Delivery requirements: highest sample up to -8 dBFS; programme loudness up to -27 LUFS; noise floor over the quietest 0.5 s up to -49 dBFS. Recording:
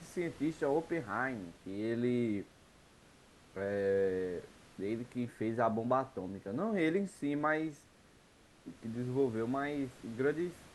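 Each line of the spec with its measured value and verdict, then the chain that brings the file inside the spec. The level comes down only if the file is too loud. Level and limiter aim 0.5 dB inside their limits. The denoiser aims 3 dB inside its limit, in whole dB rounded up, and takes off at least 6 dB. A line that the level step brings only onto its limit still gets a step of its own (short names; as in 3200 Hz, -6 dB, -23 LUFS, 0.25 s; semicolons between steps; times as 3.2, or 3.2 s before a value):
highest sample -17.5 dBFS: OK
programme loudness -36.0 LUFS: OK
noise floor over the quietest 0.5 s -63 dBFS: OK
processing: none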